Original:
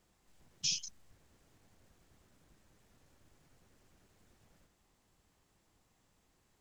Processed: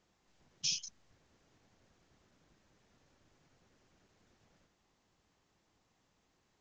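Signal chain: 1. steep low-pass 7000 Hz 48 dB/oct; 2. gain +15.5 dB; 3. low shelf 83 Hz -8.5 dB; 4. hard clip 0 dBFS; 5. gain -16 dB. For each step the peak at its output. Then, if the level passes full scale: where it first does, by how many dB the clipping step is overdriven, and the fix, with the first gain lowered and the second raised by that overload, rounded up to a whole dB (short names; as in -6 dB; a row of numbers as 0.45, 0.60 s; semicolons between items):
-21.0, -5.5, -5.5, -5.5, -21.5 dBFS; no overload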